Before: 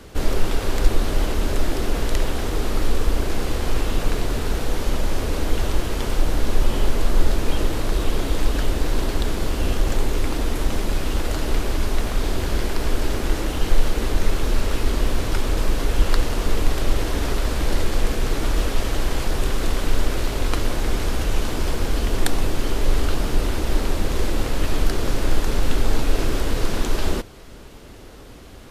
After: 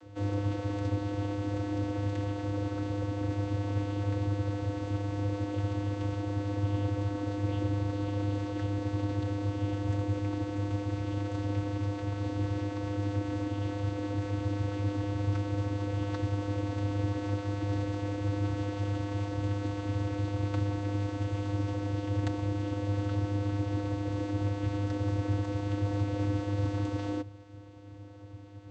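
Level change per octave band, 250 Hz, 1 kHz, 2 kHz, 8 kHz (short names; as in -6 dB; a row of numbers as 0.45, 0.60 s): -3.5 dB, -10.0 dB, -14.0 dB, under -20 dB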